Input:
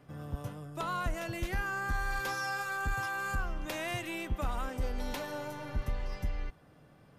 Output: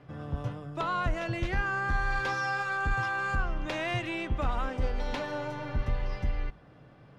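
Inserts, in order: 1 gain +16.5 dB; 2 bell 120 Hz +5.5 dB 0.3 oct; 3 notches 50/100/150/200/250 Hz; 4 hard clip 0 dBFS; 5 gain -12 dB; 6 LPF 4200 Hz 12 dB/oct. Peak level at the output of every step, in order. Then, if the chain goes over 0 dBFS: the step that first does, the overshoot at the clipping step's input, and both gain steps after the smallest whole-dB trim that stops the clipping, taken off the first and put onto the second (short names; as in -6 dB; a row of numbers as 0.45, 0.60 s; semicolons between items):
-7.0, -6.0, -5.5, -5.5, -17.5, -17.5 dBFS; no overload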